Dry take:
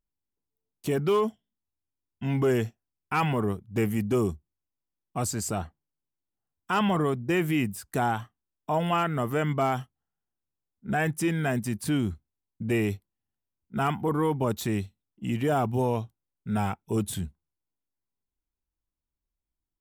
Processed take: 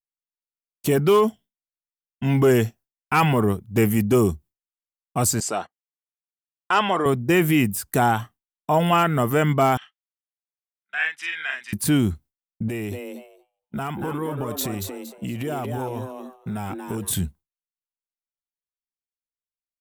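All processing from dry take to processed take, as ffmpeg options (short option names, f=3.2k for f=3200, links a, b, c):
-filter_complex "[0:a]asettb=1/sr,asplit=3[a][b][c];[a]atrim=end=5.404[d];[b]atrim=start=5.4:end=7.06,asetpts=PTS-STARTPTS,afade=t=in:d=0.004:c=qsin,afade=t=out:st=1.656:d=0.004:c=qsin,agate=range=-24dB:threshold=-39dB:ratio=16:release=100:detection=peak,highpass=400,lowpass=6.3k[e];[c]atrim=start=7.056[f];[d][e]acrossfade=d=0.004:c1=hsin:c2=qsin[g];[g][f]acrossfade=d=0.004:c1=qsin:c2=hsin,asettb=1/sr,asplit=3[h][i][j];[h]atrim=end=9.774[k];[i]atrim=start=9.77:end=11.73,asetpts=PTS-STARTPTS,afade=t=in:d=0.004:c=qsin,afade=t=out:st=1.956:d=0.004:c=qsin,asuperpass=centerf=2400:order=4:qfactor=1.1,asplit=2[l][m];[m]adelay=44,volume=-2.5dB[n];[l][n]amix=inputs=2:normalize=0,atrim=end_sample=86436[o];[j]atrim=start=11.726[p];[k][o]acrossfade=d=0.004:c1=hsin:c2=qsin[q];[q][p]acrossfade=d=0.004:c1=qsin:c2=hsin,asettb=1/sr,asplit=3[r][s][t];[r]atrim=end=12.684[u];[s]atrim=start=12.68:end=17.11,asetpts=PTS-STARTPTS,afade=t=in:d=0.004:c=qsin,afade=t=out:st=4.426:d=0.004:c=qsin,acompressor=threshold=-32dB:ratio=8:attack=3.2:release=140:knee=1:detection=peak,asplit=5[v][w][x][y][z];[w]adelay=232,afreqshift=130,volume=-6dB[aa];[x]adelay=464,afreqshift=260,volume=-16.2dB[ab];[y]adelay=696,afreqshift=390,volume=-26.3dB[ac];[z]adelay=928,afreqshift=520,volume=-36.5dB[ad];[v][aa][ab][ac][ad]amix=inputs=5:normalize=0,atrim=end_sample=195363[ae];[t]atrim=start=17.106[af];[u][ae]acrossfade=d=0.004:c1=hsin:c2=qsin[ag];[ag][af]acrossfade=d=0.004:c1=qsin:c2=hsin,highshelf=f=9.9k:g=9.5,agate=range=-33dB:threshold=-45dB:ratio=3:detection=peak,volume=7dB"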